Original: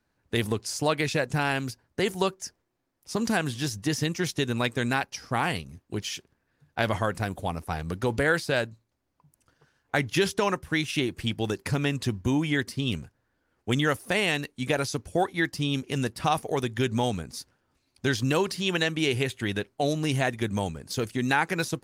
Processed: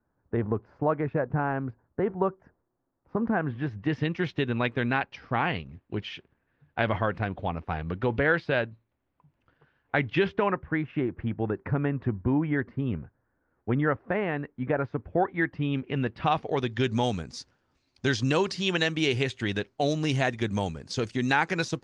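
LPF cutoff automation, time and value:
LPF 24 dB/oct
3.24 s 1400 Hz
4.09 s 3100 Hz
10.11 s 3100 Hz
10.82 s 1700 Hz
14.82 s 1700 Hz
16.04 s 2800 Hz
17.05 s 6700 Hz

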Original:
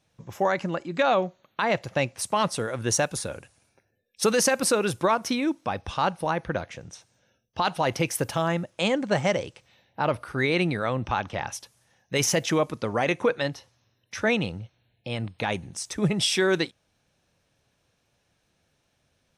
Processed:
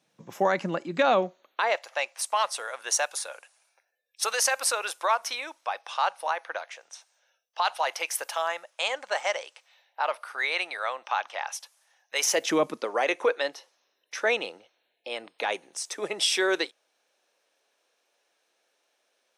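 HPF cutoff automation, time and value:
HPF 24 dB/oct
1.15 s 170 Hz
1.84 s 660 Hz
12.14 s 660 Hz
12.66 s 180 Hz
12.88 s 390 Hz

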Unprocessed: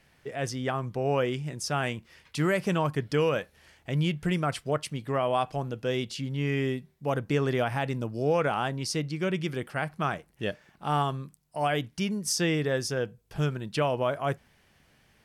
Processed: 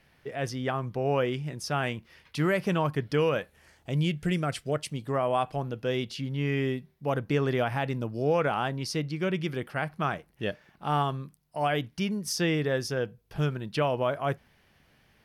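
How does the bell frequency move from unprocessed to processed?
bell -8 dB 0.63 oct
3.38 s 7600 Hz
4.12 s 990 Hz
4.75 s 990 Hz
5.6 s 7700 Hz

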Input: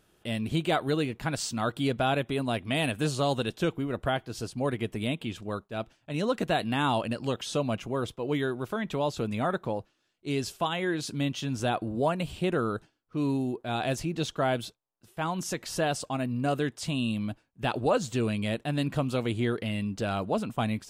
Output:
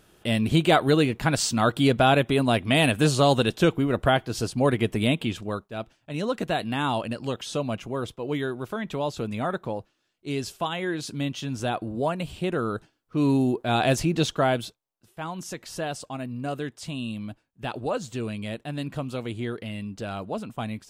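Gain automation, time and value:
5.22 s +7.5 dB
5.75 s +0.5 dB
12.54 s +0.5 dB
13.43 s +7.5 dB
14.17 s +7.5 dB
15.19 s -3 dB

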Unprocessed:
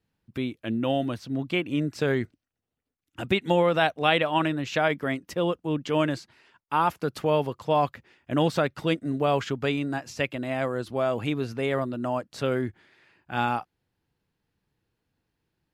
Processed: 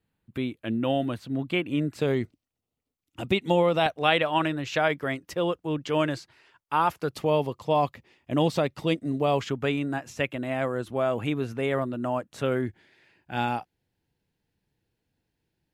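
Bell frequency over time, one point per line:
bell -9.5 dB 0.43 oct
5500 Hz
from 2.02 s 1600 Hz
from 3.86 s 220 Hz
from 7.11 s 1500 Hz
from 9.49 s 4700 Hz
from 12.66 s 1200 Hz

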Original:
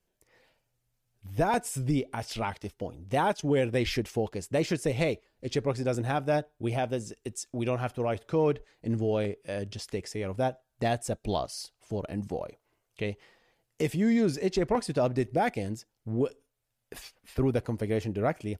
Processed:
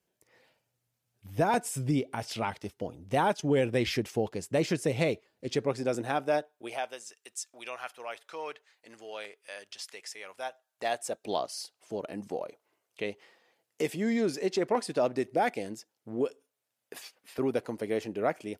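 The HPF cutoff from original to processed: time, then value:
5.11 s 110 Hz
6.23 s 260 Hz
7.02 s 1100 Hz
10.44 s 1100 Hz
11.42 s 270 Hz

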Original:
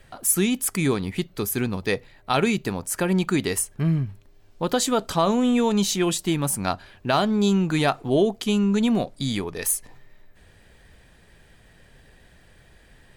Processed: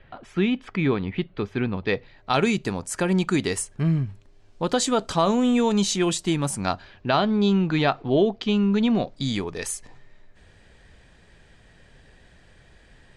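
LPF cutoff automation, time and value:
LPF 24 dB/oct
1.75 s 3300 Hz
2.49 s 8900 Hz
6.49 s 8900 Hz
7.19 s 4700 Hz
8.79 s 4700 Hz
9.47 s 8200 Hz

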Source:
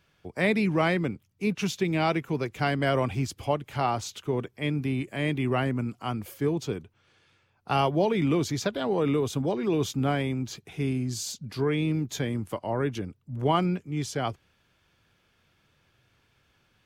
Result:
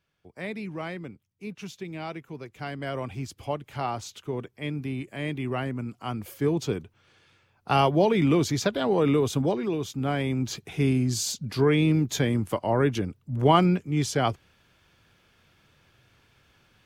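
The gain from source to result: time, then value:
2.4 s -10.5 dB
3.56 s -3.5 dB
5.79 s -3.5 dB
6.63 s +3 dB
9.47 s +3 dB
9.84 s -5 dB
10.51 s +5 dB

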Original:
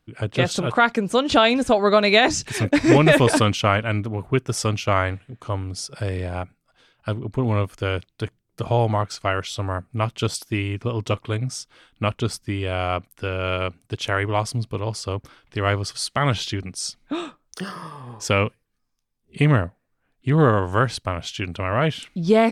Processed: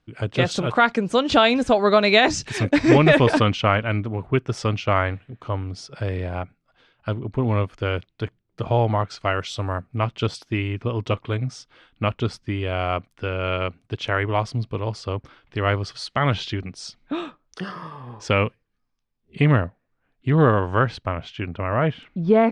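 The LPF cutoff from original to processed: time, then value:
2.69 s 6500 Hz
3.33 s 3800 Hz
9.02 s 3800 Hz
9.61 s 7100 Hz
9.92 s 3900 Hz
20.61 s 3900 Hz
21.57 s 1900 Hz

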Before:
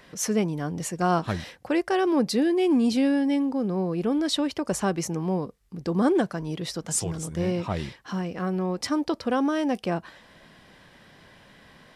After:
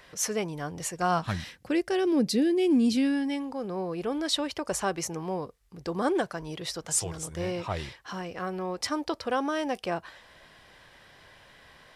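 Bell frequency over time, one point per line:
bell -11 dB 1.4 oct
0.98 s 220 Hz
1.8 s 1000 Hz
2.79 s 1000 Hz
3.69 s 210 Hz

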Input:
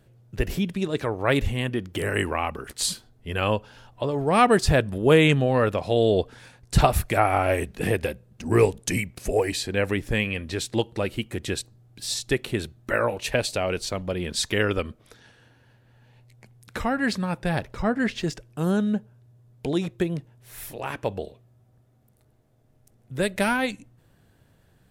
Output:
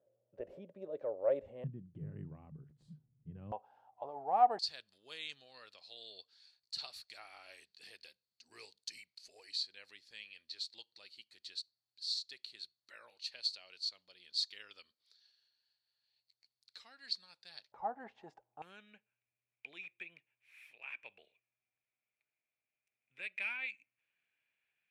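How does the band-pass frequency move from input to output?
band-pass, Q 12
560 Hz
from 1.64 s 150 Hz
from 3.52 s 780 Hz
from 4.59 s 4400 Hz
from 17.72 s 820 Hz
from 18.62 s 2400 Hz

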